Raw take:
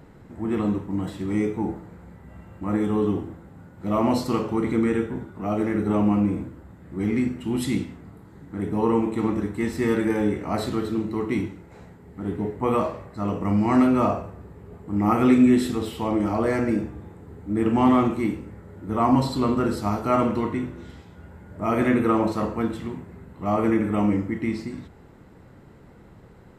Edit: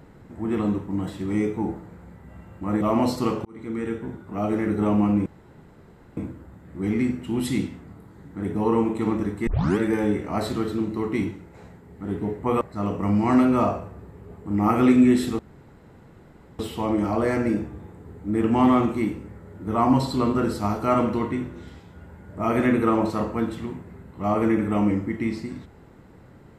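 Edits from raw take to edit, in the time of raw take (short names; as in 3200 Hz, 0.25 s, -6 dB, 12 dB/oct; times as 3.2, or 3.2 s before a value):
2.81–3.89 cut
4.53–5.66 fade in equal-power
6.34 insert room tone 0.91 s
9.64 tape start 0.31 s
12.78–13.03 cut
15.81 insert room tone 1.20 s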